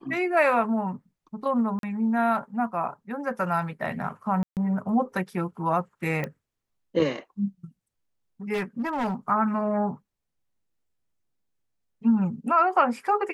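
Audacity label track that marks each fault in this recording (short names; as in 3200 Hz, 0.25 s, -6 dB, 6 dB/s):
1.790000	1.830000	gap 42 ms
4.430000	4.570000	gap 0.138 s
6.240000	6.240000	pop -17 dBFS
8.530000	9.140000	clipped -23.5 dBFS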